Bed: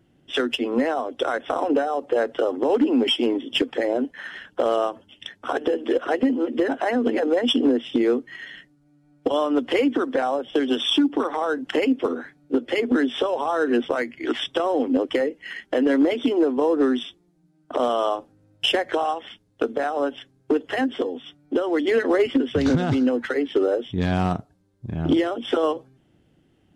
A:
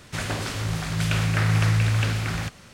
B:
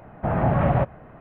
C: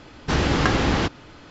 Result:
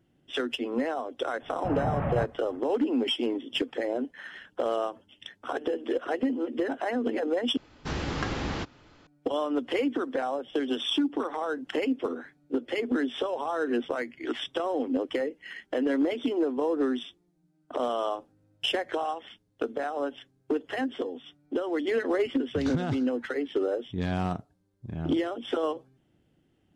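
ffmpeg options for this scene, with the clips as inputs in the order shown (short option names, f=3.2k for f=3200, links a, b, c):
-filter_complex "[0:a]volume=-7dB,asplit=2[a][b];[a]atrim=end=7.574[c];[3:a]atrim=end=1.5,asetpts=PTS-STARTPTS,volume=-11dB[d];[b]atrim=start=9.066[e];[2:a]atrim=end=1.2,asetpts=PTS-STARTPTS,volume=-9dB,afade=t=in:d=0.004:c=hsin,afade=t=out:st=1.196:d=0.004:c=hsin,adelay=1410[f];[c][d]acrossfade=d=0.004:c1=hsin:c2=hsin[g];[g][e]acrossfade=d=0.004:c1=hsin:c2=hsin[h];[h][f]amix=inputs=2:normalize=0"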